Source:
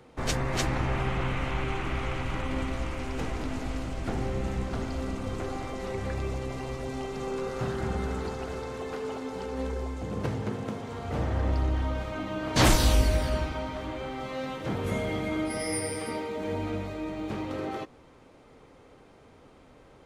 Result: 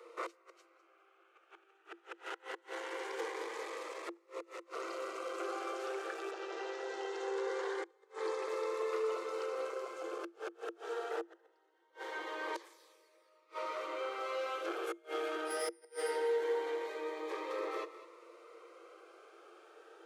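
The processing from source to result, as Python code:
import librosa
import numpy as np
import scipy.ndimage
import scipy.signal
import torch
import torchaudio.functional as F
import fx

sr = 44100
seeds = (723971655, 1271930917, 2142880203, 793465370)

y = fx.lowpass(x, sr, hz=fx.line((6.3, 5800.0), (8.47, 11000.0)), slope=24, at=(6.3, 8.47), fade=0.02)
y = y + 10.0 ** (-16.0 / 20.0) * np.pad(y, (int(202 * sr / 1000.0), 0))[:len(y)]
y = fx.gate_flip(y, sr, shuts_db=-20.0, range_db=-34)
y = 10.0 ** (-28.5 / 20.0) * np.tanh(y / 10.0 ** (-28.5 / 20.0))
y = scipy.signal.sosfilt(scipy.signal.cheby1(6, 9, 330.0, 'highpass', fs=sr, output='sos'), y)
y = fx.notch_cascade(y, sr, direction='rising', hz=0.22)
y = F.gain(torch.from_numpy(y), 6.5).numpy()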